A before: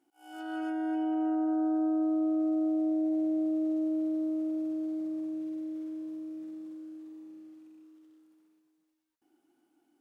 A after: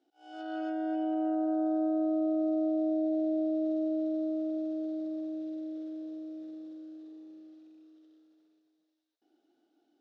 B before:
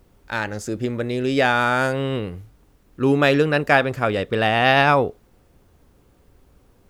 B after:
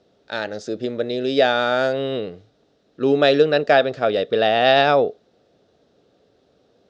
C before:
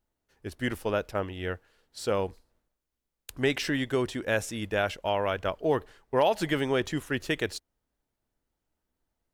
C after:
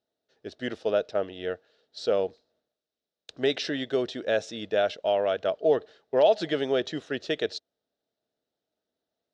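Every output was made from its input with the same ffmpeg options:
-af "highpass=180,equalizer=f=450:t=q:w=4:g=6,equalizer=f=640:t=q:w=4:g=9,equalizer=f=1000:t=q:w=4:g=-9,equalizer=f=2200:t=q:w=4:g=-5,equalizer=f=3800:t=q:w=4:g=9,equalizer=f=5400:t=q:w=4:g=3,lowpass=f=5900:w=0.5412,lowpass=f=5900:w=1.3066,volume=0.794"

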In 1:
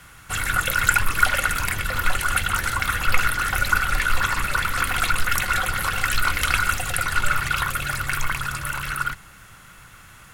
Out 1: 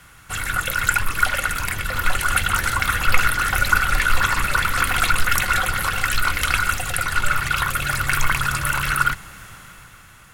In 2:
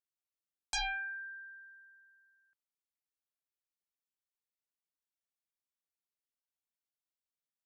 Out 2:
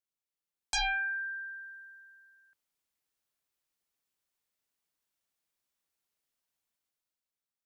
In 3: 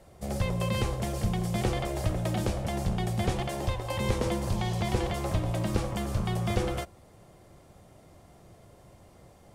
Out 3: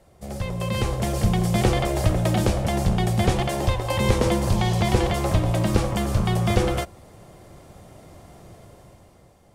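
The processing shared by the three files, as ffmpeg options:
-af "dynaudnorm=f=130:g=13:m=2.99,volume=0.891"

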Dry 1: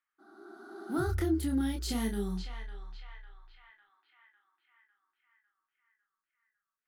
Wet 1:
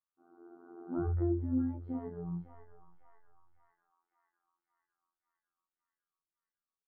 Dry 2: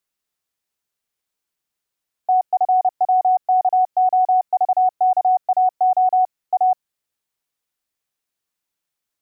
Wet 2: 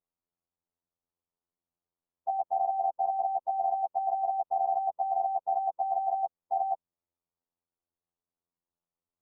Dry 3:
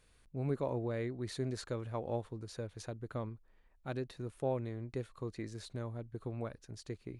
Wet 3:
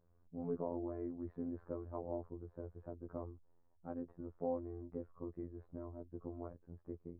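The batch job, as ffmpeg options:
-af "afftfilt=real='hypot(re,im)*cos(PI*b)':imag='0':win_size=2048:overlap=0.75,lowpass=f=1100:w=0.5412,lowpass=f=1100:w=1.3066,lowshelf=f=420:g=3.5,volume=0.794"

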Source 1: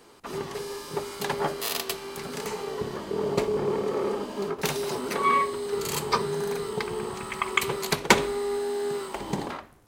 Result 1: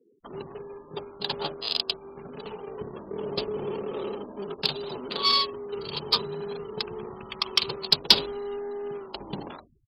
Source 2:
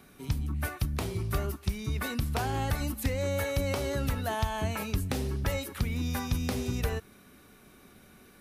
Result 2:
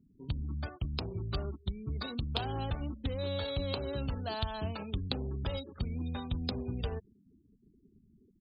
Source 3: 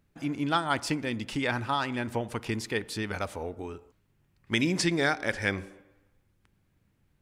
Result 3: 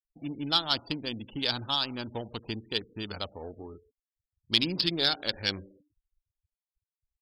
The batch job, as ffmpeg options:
-af "adynamicsmooth=sensitivity=2.5:basefreq=670,aresample=11025,asoftclip=type=tanh:threshold=0.168,aresample=44100,afftfilt=real='re*gte(hypot(re,im),0.00501)':imag='im*gte(hypot(re,im),0.00501)':win_size=1024:overlap=0.75,aexciter=amount=11:drive=8.4:freq=3200,volume=0.596"

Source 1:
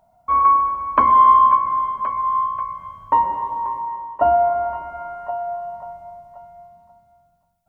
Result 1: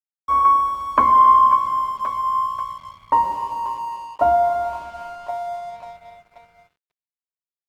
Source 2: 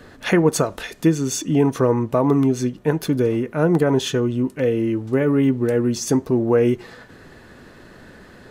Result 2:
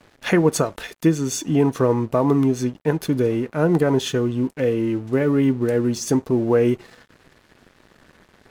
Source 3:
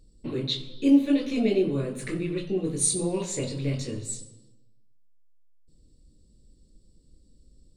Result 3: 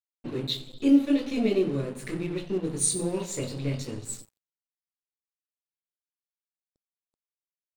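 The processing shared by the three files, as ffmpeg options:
-af "aeval=exprs='sgn(val(0))*max(abs(val(0))-0.00668,0)':c=same" -ar 48000 -c:a libmp3lame -b:a 128k

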